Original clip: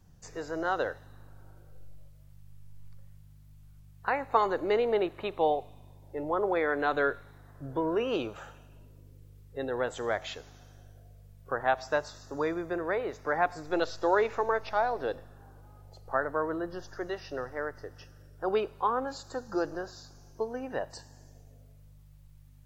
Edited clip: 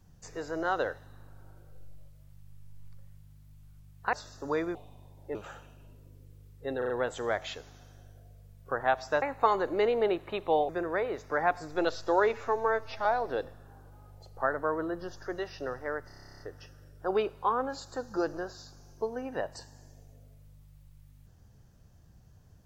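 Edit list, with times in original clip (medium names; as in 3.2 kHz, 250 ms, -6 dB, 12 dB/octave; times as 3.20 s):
4.13–5.60 s: swap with 12.02–12.64 s
6.20–8.27 s: delete
9.70 s: stutter 0.04 s, 4 plays
14.28–14.76 s: stretch 1.5×
17.78 s: stutter 0.03 s, 12 plays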